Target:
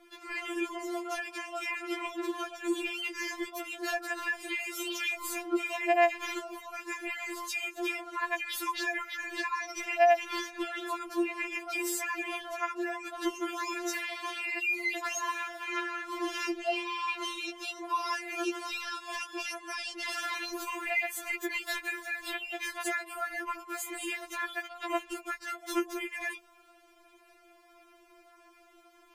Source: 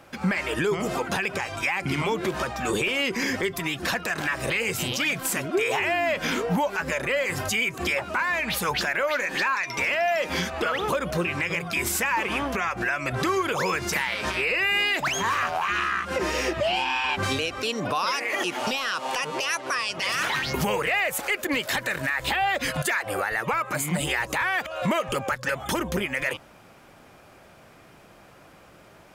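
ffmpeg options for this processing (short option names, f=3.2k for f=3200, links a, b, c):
-filter_complex "[0:a]asettb=1/sr,asplit=3[a][b][c];[a]atrim=end=13.834[d];[b]atrim=start=13.83:end=14.71,asetpts=PTS-STARTPTS,afade=t=in:d=0.004:c=qsin,afade=t=out:st=0.876:d=0.004:c=qsin,highpass=290[e];[c]atrim=start=14.706[f];[d][e]acrossfade=d=0.004:c1=hsin:c2=qsin[g];[g][f]acrossfade=d=0.004:c1=qsin:c2=hsin,afftfilt=real='re*4*eq(mod(b,16),0)':imag='im*4*eq(mod(b,16),0)':win_size=2048:overlap=0.75,volume=-6dB"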